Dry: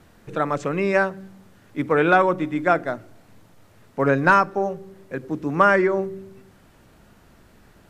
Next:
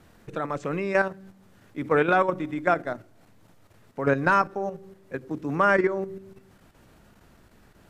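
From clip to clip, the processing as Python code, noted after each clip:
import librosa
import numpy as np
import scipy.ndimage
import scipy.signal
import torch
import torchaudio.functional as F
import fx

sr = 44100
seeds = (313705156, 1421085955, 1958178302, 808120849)

y = fx.level_steps(x, sr, step_db=9)
y = y * 10.0 ** (-1.0 / 20.0)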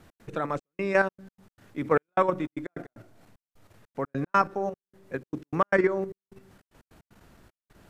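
y = fx.step_gate(x, sr, bpm=152, pattern='x.xxxx..xxx.x.', floor_db=-60.0, edge_ms=4.5)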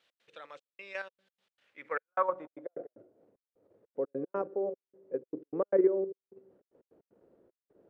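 y = fx.peak_eq(x, sr, hz=520.0, db=11.0, octaves=0.53)
y = fx.filter_sweep_bandpass(y, sr, from_hz=3300.0, to_hz=380.0, start_s=1.54, end_s=2.97, q=2.3)
y = y * 10.0 ** (-3.5 / 20.0)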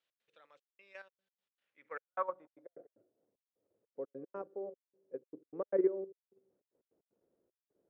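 y = fx.upward_expand(x, sr, threshold_db=-42.0, expansion=1.5)
y = y * 10.0 ** (-4.0 / 20.0)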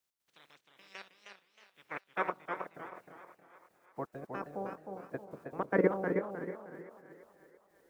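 y = fx.spec_clip(x, sr, under_db=26)
y = fx.echo_thinned(y, sr, ms=340, feedback_pct=56, hz=230.0, wet_db=-14.0)
y = fx.echo_warbled(y, sr, ms=313, feedback_pct=33, rate_hz=2.8, cents=124, wet_db=-5.5)
y = y * 10.0 ** (3.0 / 20.0)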